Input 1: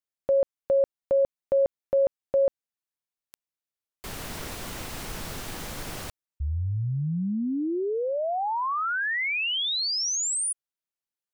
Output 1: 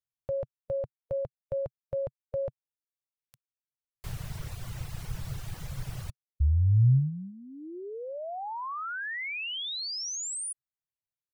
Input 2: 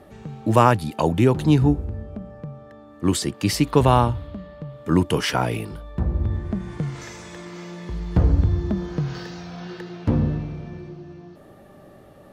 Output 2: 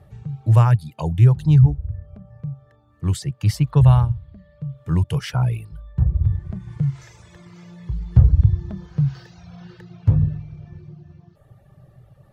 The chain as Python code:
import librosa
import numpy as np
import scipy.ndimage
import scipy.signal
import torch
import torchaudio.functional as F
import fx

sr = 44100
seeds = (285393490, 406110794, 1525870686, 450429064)

y = fx.low_shelf_res(x, sr, hz=180.0, db=11.0, q=3.0)
y = fx.dereverb_blind(y, sr, rt60_s=0.9)
y = y * 10.0 ** (-7.5 / 20.0)